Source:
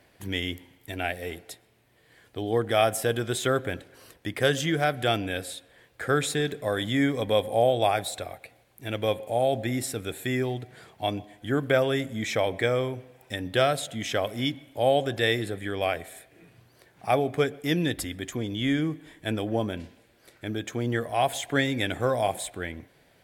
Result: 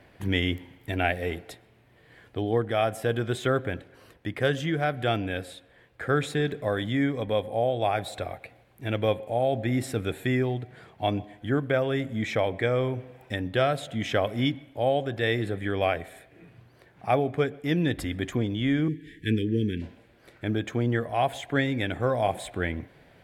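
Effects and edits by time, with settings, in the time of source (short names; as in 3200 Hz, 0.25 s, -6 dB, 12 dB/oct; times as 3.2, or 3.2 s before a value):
18.88–19.82 Chebyshev band-stop 440–1700 Hz, order 4
whole clip: tone controls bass +3 dB, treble -11 dB; vocal rider within 5 dB 0.5 s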